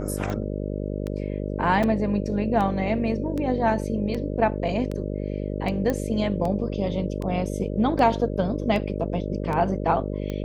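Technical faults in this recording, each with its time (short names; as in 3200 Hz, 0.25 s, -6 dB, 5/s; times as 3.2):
buzz 50 Hz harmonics 12 -29 dBFS
tick 78 rpm -18 dBFS
1.83 gap 4.4 ms
5.9 pop -13 dBFS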